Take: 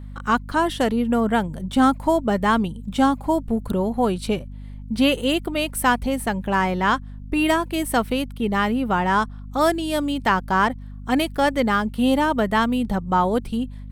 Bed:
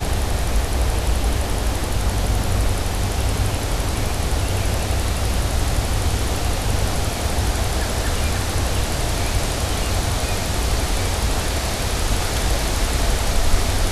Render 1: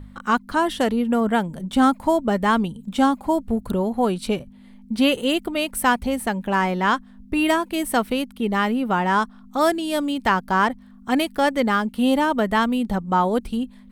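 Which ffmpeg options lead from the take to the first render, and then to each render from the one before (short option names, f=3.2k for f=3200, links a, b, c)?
-af "bandreject=f=50:t=h:w=4,bandreject=f=100:t=h:w=4,bandreject=f=150:t=h:w=4"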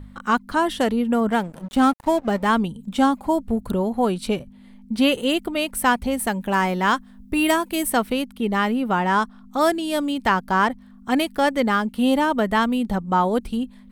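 -filter_complex "[0:a]asettb=1/sr,asplit=3[a][b][c];[a]atrim=end=1.304[d];[b]atrim=start=1.3:end=2.5,asetpts=PTS-STARTPTS,afade=t=in:d=0.004:c=qsin,afade=t=out:st=1.196:d=0.004:c=qsin,aeval=exprs='sgn(val(0))*max(abs(val(0))-0.015,0)':c=same[e];[c]atrim=start=2.496[f];[d][e]acrossfade=d=0.004:c1=hsin:c2=qsin[g];[g][f]acrossfade=d=0.004:c1=qsin:c2=hsin,asettb=1/sr,asplit=3[h][i][j];[h]atrim=end=6.194[k];[i]atrim=start=6.19:end=7.9,asetpts=PTS-STARTPTS,afade=t=in:d=0.004:c=qsin,afade=t=out:st=1.706:d=0.004:c=qsin,highshelf=f=7.3k:g=9[l];[j]atrim=start=7.896[m];[k][l]acrossfade=d=0.004:c1=hsin:c2=qsin[n];[n][m]acrossfade=d=0.004:c1=qsin:c2=hsin"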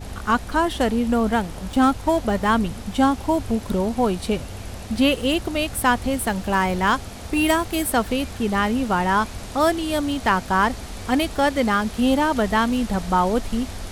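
-filter_complex "[1:a]volume=-13.5dB[a];[0:a][a]amix=inputs=2:normalize=0"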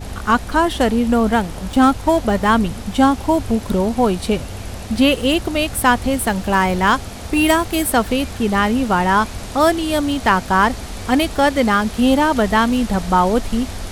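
-af "volume=4.5dB,alimiter=limit=-2dB:level=0:latency=1"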